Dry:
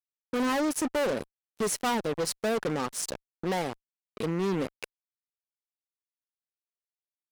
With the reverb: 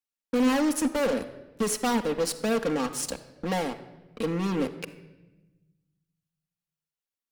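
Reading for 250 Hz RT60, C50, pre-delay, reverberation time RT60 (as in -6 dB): 1.6 s, 12.5 dB, 4 ms, 1.1 s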